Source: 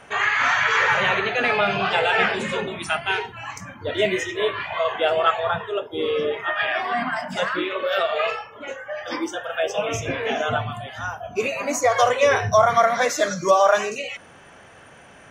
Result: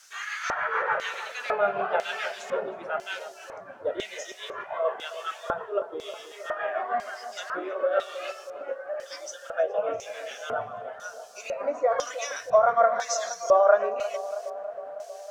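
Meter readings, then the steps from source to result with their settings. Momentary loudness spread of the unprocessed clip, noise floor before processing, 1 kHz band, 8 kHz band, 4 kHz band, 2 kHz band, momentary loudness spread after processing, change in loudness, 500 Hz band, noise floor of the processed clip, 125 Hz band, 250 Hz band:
13 LU, −47 dBFS, −6.5 dB, −5.5 dB, −11.5 dB, −11.0 dB, 16 LU, −6.5 dB, −4.0 dB, −45 dBFS, below −20 dB, −14.5 dB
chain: low-pass filter 7,800 Hz
parametric band 1,400 Hz +10 dB 0.66 octaves
shaped tremolo triangle 6.8 Hz, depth 55%
in parallel at −11.5 dB: bit-depth reduction 6 bits, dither triangular
on the sum: auto-filter band-pass square 1 Hz 560–5,900 Hz
on a send: feedback echo with a band-pass in the loop 318 ms, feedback 74%, band-pass 640 Hz, level −12 dB

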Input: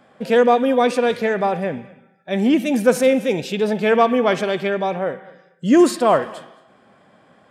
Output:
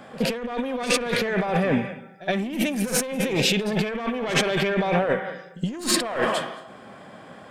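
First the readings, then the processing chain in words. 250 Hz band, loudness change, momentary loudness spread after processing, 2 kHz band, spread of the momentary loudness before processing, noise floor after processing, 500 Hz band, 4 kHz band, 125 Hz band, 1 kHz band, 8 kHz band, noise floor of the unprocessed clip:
−6.5 dB, −6.0 dB, 14 LU, −1.0 dB, 12 LU, −45 dBFS, −8.5 dB, +4.0 dB, +2.0 dB, −8.0 dB, +5.5 dB, −54 dBFS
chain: one-sided soft clipper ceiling −15.5 dBFS
high-shelf EQ 7,900 Hz +2.5 dB
compressor whose output falls as the input rises −28 dBFS, ratio −1
on a send: backwards echo 70 ms −16.5 dB
on the sum: dynamic equaliser 2,300 Hz, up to +5 dB, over −45 dBFS, Q 0.81
level +2 dB

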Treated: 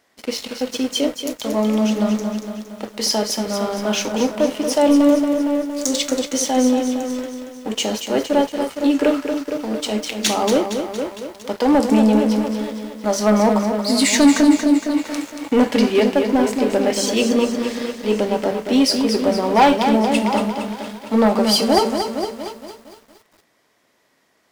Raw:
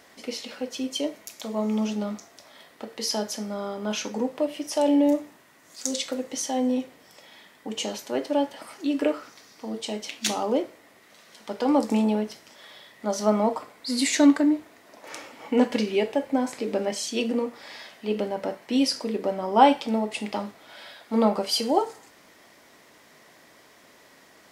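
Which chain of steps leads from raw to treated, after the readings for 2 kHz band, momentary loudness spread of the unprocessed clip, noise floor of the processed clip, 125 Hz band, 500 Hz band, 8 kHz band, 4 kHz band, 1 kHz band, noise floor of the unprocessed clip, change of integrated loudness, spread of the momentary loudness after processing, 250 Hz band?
+9.0 dB, 17 LU, −62 dBFS, can't be measured, +8.0 dB, +8.5 dB, +8.5 dB, +6.0 dB, −55 dBFS, +7.5 dB, 13 LU, +8.5 dB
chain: echo through a band-pass that steps 230 ms, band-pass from 150 Hz, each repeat 1.4 octaves, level −7.5 dB
leveller curve on the samples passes 3
feedback echo at a low word length 231 ms, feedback 55%, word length 7 bits, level −7.5 dB
level −3 dB

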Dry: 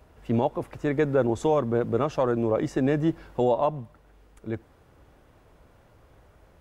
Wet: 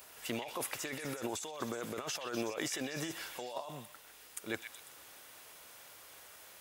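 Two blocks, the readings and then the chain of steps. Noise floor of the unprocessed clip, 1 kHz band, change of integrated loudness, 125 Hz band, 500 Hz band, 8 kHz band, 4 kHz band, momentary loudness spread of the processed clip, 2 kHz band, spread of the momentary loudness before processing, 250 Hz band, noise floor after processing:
−58 dBFS, −14.0 dB, −14.0 dB, −20.0 dB, −17.5 dB, can't be measured, +4.5 dB, 15 LU, −3.5 dB, 13 LU, −15.5 dB, −57 dBFS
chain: first difference
compressor whose output falls as the input rises −53 dBFS, ratio −1
echo through a band-pass that steps 124 ms, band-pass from 2,600 Hz, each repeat 0.7 octaves, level −4 dB
level +13 dB

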